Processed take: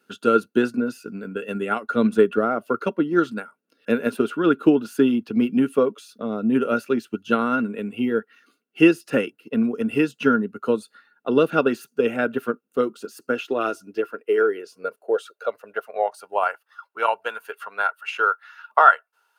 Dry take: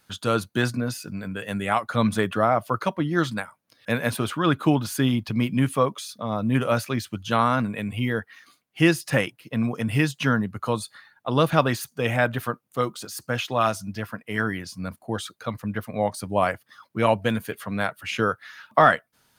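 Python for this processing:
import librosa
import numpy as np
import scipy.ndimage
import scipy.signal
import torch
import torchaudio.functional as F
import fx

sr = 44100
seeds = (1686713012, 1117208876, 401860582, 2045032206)

y = fx.small_body(x, sr, hz=(420.0, 1400.0, 2700.0), ring_ms=30, db=16)
y = fx.filter_sweep_highpass(y, sr, from_hz=230.0, to_hz=890.0, start_s=12.97, end_s=16.56, q=3.2)
y = fx.transient(y, sr, attack_db=4, sustain_db=-1)
y = y * 10.0 ** (-9.5 / 20.0)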